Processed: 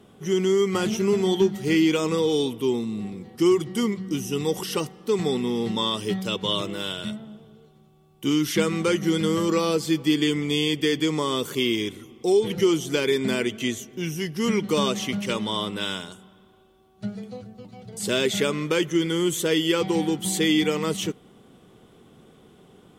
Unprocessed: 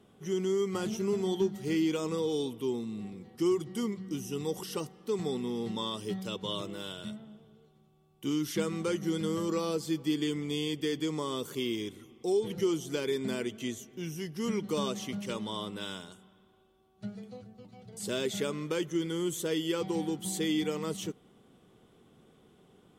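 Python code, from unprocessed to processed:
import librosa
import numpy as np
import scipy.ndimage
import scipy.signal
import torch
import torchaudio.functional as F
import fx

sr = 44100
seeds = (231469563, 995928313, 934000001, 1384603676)

y = fx.dynamic_eq(x, sr, hz=2300.0, q=1.1, threshold_db=-51.0, ratio=4.0, max_db=5)
y = y * 10.0 ** (8.5 / 20.0)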